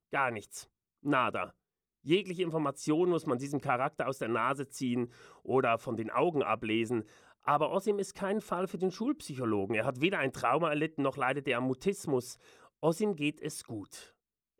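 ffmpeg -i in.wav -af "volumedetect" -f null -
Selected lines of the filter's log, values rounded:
mean_volume: -32.7 dB
max_volume: -13.8 dB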